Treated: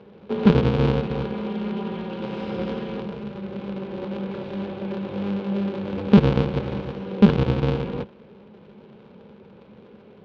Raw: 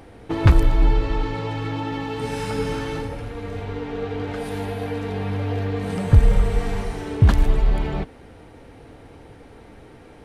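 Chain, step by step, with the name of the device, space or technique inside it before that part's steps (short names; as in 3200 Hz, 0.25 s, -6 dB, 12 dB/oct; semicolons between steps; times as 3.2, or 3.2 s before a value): ring modulator pedal into a guitar cabinet (polarity switched at an audio rate 100 Hz; speaker cabinet 90–3700 Hz, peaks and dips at 210 Hz +10 dB, 310 Hz -4 dB, 460 Hz +10 dB, 670 Hz -7 dB, 1200 Hz -3 dB, 1900 Hz -9 dB); gain -5 dB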